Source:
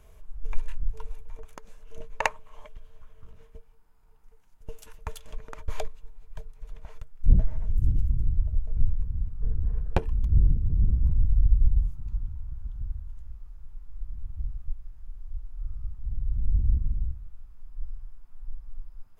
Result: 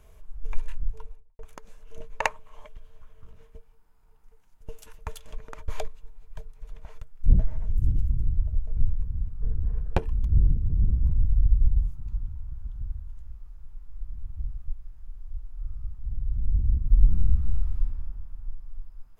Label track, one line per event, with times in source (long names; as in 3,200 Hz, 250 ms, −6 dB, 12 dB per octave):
0.820000	1.390000	fade out and dull
16.870000	17.800000	thrown reverb, RT60 2.2 s, DRR −12 dB